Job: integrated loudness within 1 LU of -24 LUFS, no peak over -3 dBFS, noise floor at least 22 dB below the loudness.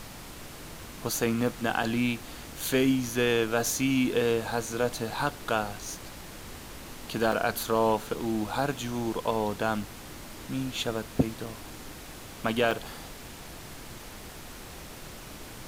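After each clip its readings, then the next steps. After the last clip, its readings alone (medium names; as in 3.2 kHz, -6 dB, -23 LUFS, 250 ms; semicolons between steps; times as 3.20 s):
dropouts 8; longest dropout 2.8 ms; noise floor -44 dBFS; noise floor target -51 dBFS; loudness -29.0 LUFS; peak level -10.0 dBFS; loudness target -24.0 LUFS
-> interpolate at 1.83/2.60/3.66/7.32/8.18/9.83/11.46/12.71 s, 2.8 ms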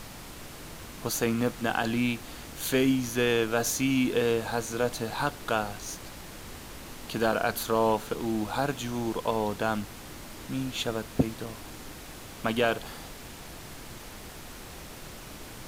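dropouts 0; noise floor -44 dBFS; noise floor target -51 dBFS
-> noise print and reduce 7 dB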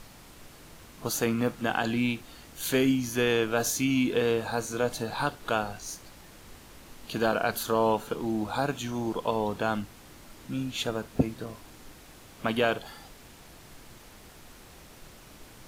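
noise floor -51 dBFS; loudness -29.0 LUFS; peak level -10.0 dBFS; loudness target -24.0 LUFS
-> trim +5 dB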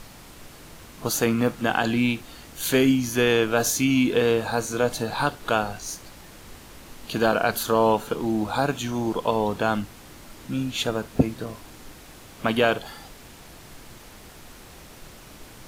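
loudness -24.0 LUFS; peak level -5.0 dBFS; noise floor -46 dBFS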